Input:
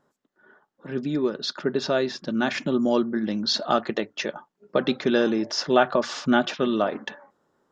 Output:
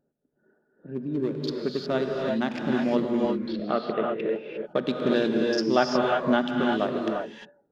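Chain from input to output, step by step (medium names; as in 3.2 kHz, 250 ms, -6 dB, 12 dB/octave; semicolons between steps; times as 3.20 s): local Wiener filter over 41 samples; 3.25–4.35 s: cabinet simulation 140–2700 Hz, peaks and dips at 450 Hz +6 dB, 860 Hz -8 dB, 1.7 kHz -4 dB; gated-style reverb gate 380 ms rising, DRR -0.5 dB; trim -3 dB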